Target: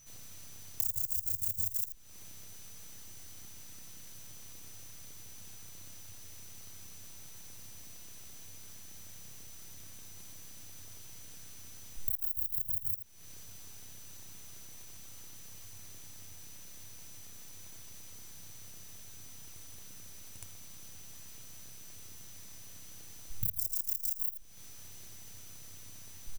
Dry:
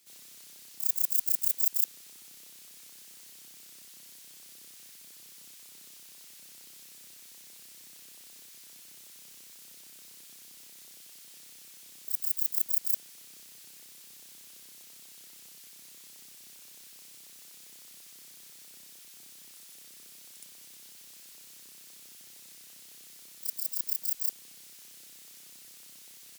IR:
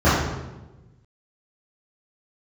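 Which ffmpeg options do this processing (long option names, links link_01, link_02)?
-af "asoftclip=type=tanh:threshold=-23.5dB,acrusher=bits=7:dc=4:mix=0:aa=0.000001,aeval=exprs='val(0)+0.00112*sin(2*PI*6000*n/s)':channel_layout=same,afwtdn=0.00501,lowshelf=frequency=330:gain=7.5,aecho=1:1:81:0.2,acompressor=threshold=-48dB:ratio=12,equalizer=frequency=97:width=1.6:gain=14.5,volume=18dB"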